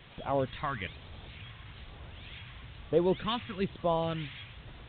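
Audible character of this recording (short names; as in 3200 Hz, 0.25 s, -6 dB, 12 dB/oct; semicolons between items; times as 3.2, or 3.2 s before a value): phasing stages 2, 1.1 Hz, lowest notch 490–2000 Hz; a quantiser's noise floor 8-bit, dither triangular; A-law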